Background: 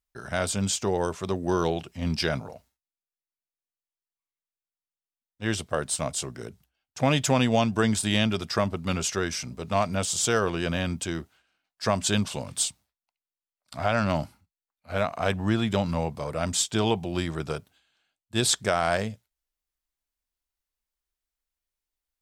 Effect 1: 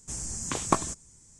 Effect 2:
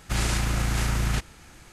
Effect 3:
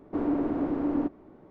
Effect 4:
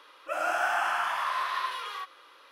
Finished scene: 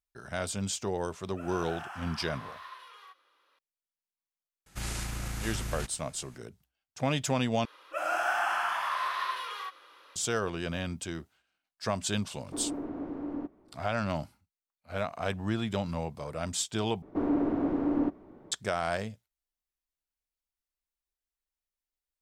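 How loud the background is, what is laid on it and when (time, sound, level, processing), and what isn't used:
background -6.5 dB
1.08 add 4 -15 dB
4.66 add 2 -11 dB + high shelf 6600 Hz +6.5 dB
7.65 replace with 4 -1.5 dB
12.39 add 3 -9 dB
17.02 replace with 3 -0.5 dB
not used: 1

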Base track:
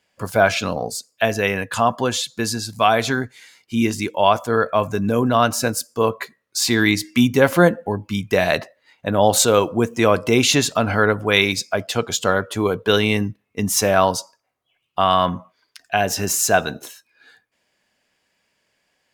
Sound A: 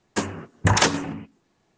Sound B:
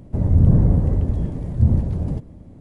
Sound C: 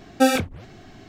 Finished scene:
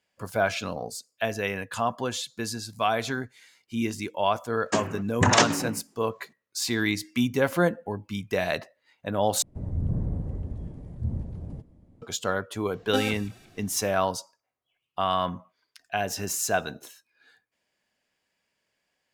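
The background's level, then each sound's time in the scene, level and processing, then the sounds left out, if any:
base track -9 dB
4.56 add A -1 dB + HPF 110 Hz
9.42 replace with B -14 dB
12.73 add C -11 dB + thin delay 0.177 s, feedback 46%, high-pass 2000 Hz, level -13 dB

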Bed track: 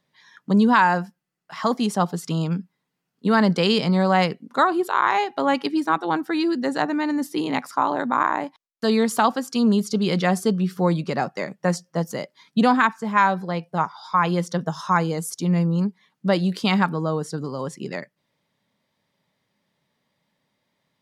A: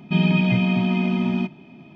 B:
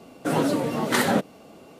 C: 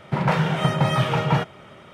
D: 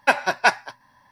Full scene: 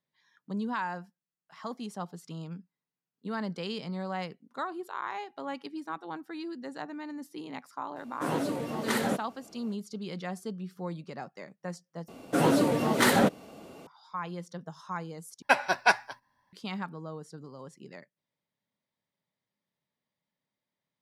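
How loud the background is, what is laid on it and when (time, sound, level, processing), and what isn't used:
bed track -16.5 dB
7.96 add B -8 dB
12.08 replace with B -0.5 dB + hard clip -14.5 dBFS
15.42 replace with D -5 dB + gate -54 dBFS, range -10 dB
not used: A, C

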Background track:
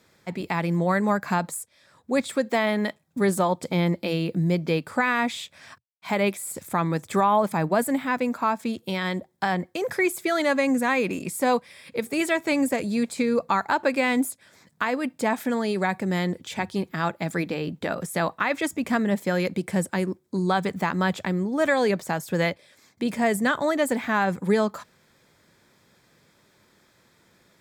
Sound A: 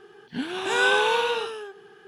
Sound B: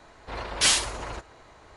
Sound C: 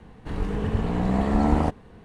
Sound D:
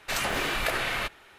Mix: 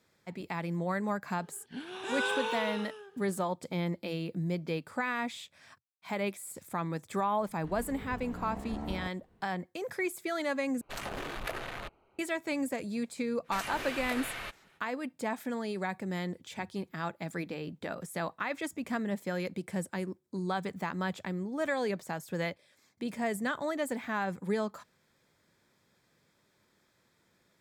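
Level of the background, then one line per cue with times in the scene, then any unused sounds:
background track -10 dB
1.38 add A -11.5 dB
7.38 add C -18 dB
10.81 replace with D -7 dB + Wiener smoothing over 25 samples
13.43 add D -10.5 dB, fades 0.05 s
not used: B

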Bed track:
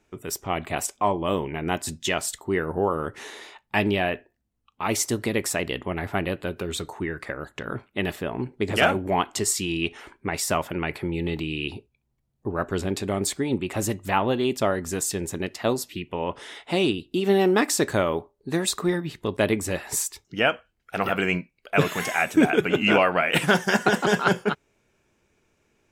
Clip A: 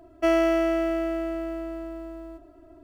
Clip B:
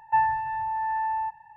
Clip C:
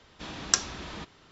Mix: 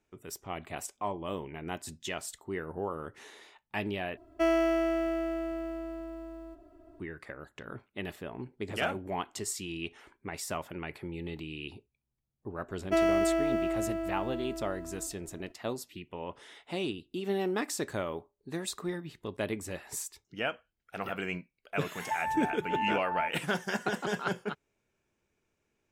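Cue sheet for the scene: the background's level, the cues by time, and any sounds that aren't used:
bed track -11.5 dB
4.17 replace with A -5 dB
12.69 add A -4.5 dB
21.98 add B -3 dB + beating tremolo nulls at 2.4 Hz
not used: C

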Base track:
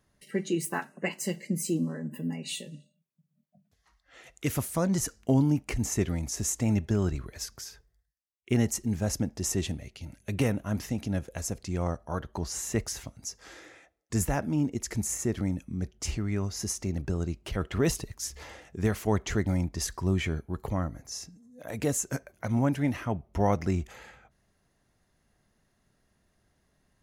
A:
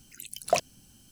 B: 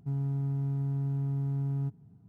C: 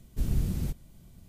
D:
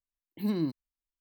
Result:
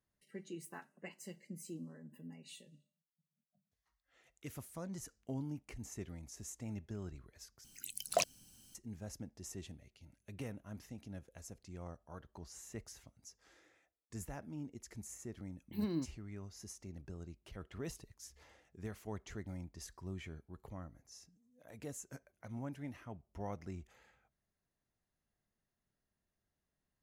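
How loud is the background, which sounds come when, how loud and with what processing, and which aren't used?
base track -18 dB
7.64 replace with A -9 dB + high shelf 2400 Hz +6.5 dB
15.34 add D -7.5 dB
not used: B, C

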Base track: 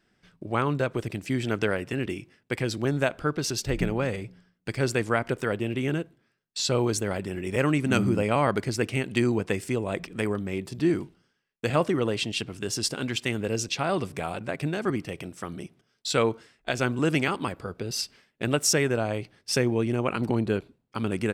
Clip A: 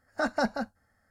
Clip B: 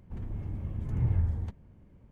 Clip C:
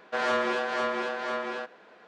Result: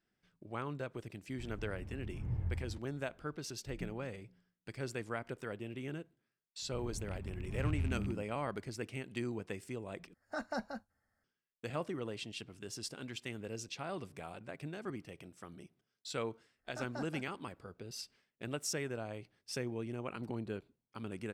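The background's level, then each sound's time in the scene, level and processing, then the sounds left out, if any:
base track -15 dB
1.28 add B -10 dB
6.62 add B -8.5 dB + rattling part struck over -30 dBFS, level -31 dBFS
10.14 replace with A -11.5 dB
16.57 add A -17.5 dB
not used: C

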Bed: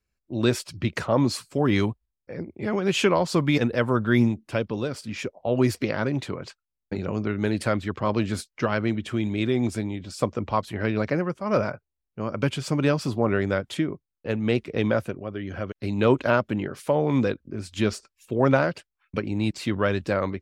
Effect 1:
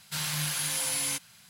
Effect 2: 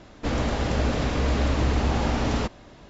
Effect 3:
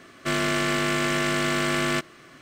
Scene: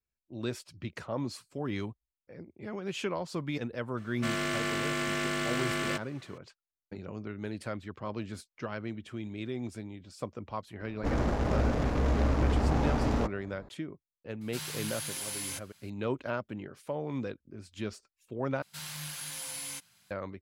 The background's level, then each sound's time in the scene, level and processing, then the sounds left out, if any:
bed -13 dB
3.97 add 3 -7.5 dB
10.8 add 2 -3.5 dB + Wiener smoothing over 15 samples
14.41 add 1 -7.5 dB
18.62 replace with 1 -9.5 dB

